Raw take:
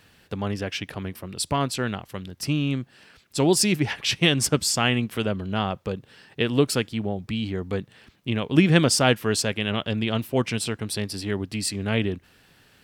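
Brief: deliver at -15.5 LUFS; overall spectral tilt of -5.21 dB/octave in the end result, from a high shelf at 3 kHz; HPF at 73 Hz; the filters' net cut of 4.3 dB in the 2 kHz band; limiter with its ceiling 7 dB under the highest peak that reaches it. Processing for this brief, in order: high-pass 73 Hz; peaking EQ 2 kHz -3 dB; treble shelf 3 kHz -6.5 dB; trim +12 dB; peak limiter 0 dBFS

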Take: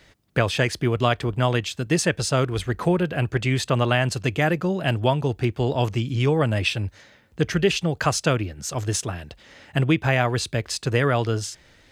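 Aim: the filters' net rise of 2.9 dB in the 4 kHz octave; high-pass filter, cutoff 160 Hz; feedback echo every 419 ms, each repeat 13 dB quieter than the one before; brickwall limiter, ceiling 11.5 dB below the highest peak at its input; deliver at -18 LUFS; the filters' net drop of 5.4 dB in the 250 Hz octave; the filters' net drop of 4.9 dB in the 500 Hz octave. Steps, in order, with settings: high-pass 160 Hz; peaking EQ 250 Hz -4.5 dB; peaking EQ 500 Hz -5 dB; peaking EQ 4 kHz +4 dB; peak limiter -17.5 dBFS; feedback delay 419 ms, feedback 22%, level -13 dB; trim +11 dB

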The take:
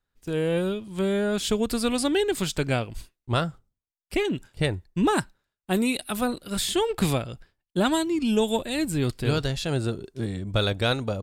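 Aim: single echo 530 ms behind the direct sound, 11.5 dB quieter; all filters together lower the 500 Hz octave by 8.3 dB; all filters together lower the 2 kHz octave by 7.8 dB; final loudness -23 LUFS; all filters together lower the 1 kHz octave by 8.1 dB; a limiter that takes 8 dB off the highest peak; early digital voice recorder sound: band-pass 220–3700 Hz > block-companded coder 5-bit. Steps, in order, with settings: peaking EQ 500 Hz -9 dB; peaking EQ 1 kHz -5.5 dB; peaking EQ 2 kHz -8 dB; peak limiter -20.5 dBFS; band-pass 220–3700 Hz; delay 530 ms -11.5 dB; block-companded coder 5-bit; trim +11 dB

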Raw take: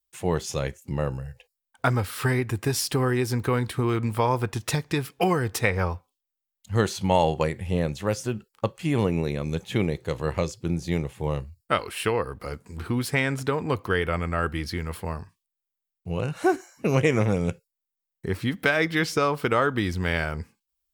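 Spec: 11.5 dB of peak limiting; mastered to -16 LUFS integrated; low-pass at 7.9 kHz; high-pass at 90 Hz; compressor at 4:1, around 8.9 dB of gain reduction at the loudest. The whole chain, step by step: high-pass 90 Hz; low-pass 7.9 kHz; compression 4:1, threshold -27 dBFS; trim +19.5 dB; peak limiter -4 dBFS

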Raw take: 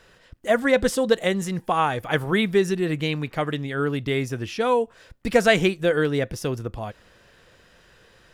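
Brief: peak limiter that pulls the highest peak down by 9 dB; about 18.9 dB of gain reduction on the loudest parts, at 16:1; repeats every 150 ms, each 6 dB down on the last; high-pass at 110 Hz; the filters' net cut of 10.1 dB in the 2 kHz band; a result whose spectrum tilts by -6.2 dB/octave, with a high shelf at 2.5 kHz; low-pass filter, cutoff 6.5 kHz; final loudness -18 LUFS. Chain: high-pass 110 Hz; low-pass 6.5 kHz; peaking EQ 2 kHz -9 dB; treble shelf 2.5 kHz -9 dB; compression 16:1, threshold -33 dBFS; peak limiter -32 dBFS; feedback delay 150 ms, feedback 50%, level -6 dB; trim +22.5 dB

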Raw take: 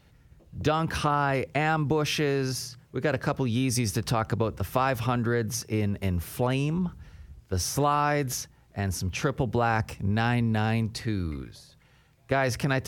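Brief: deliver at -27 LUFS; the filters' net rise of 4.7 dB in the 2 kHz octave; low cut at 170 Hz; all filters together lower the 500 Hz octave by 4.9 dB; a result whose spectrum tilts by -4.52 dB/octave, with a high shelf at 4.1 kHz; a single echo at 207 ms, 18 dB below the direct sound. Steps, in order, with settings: high-pass 170 Hz; peaking EQ 500 Hz -6.5 dB; peaking EQ 2 kHz +8 dB; treble shelf 4.1 kHz -6 dB; delay 207 ms -18 dB; trim +1.5 dB

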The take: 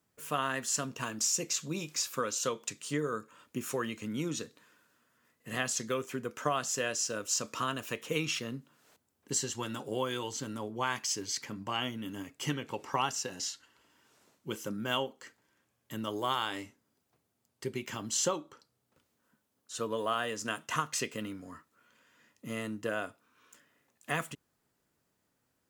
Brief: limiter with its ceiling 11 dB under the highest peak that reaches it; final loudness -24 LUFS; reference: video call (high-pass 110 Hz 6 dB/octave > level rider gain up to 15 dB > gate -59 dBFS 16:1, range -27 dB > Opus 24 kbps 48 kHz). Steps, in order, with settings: peak limiter -26.5 dBFS; high-pass 110 Hz 6 dB/octave; level rider gain up to 15 dB; gate -59 dBFS 16:1, range -27 dB; trim +4.5 dB; Opus 24 kbps 48 kHz

